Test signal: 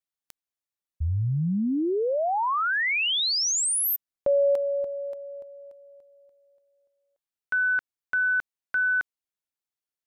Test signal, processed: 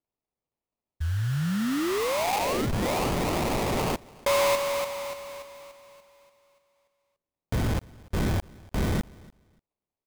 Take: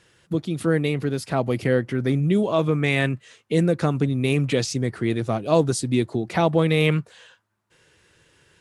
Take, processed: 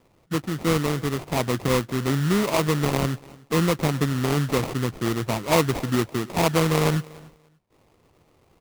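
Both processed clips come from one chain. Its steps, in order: sample-rate reducer 1600 Hz, jitter 20%; feedback echo 0.291 s, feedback 19%, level -23.5 dB; gain -1.5 dB

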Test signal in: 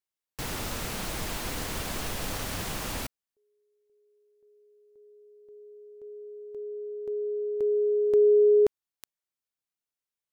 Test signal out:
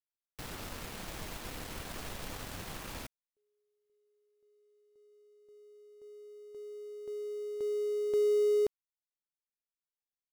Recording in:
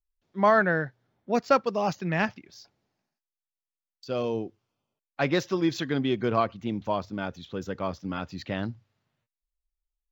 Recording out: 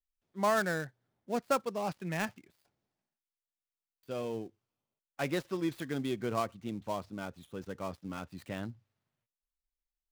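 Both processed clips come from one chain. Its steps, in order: switching dead time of 0.098 ms; gain -8 dB

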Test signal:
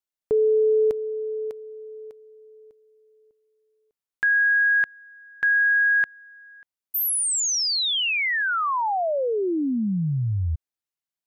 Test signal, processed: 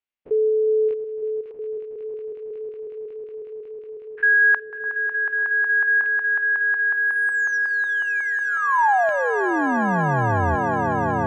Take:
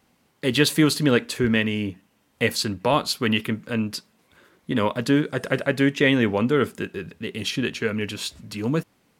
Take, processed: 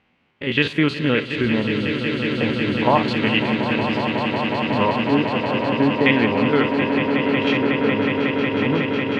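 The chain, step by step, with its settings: stepped spectrum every 50 ms; LFO low-pass square 0.33 Hz 930–2600 Hz; swelling echo 0.183 s, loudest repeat 8, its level -9.5 dB

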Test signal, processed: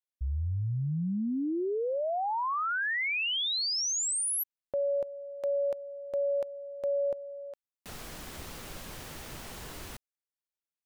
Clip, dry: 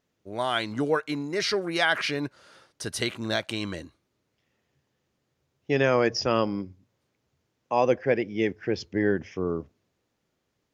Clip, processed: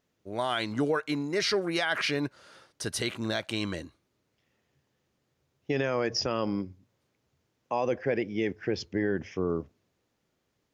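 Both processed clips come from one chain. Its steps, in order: limiter -18 dBFS

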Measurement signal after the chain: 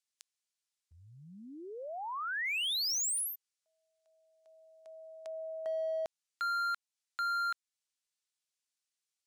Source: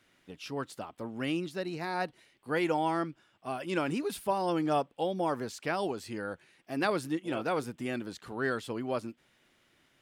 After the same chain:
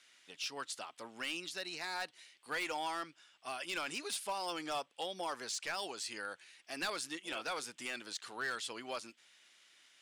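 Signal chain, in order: weighting filter ITU-R 468; in parallel at -1 dB: compressor 20:1, threshold -36 dBFS; on the sum: hard clip -23 dBFS; gain -8.5 dB

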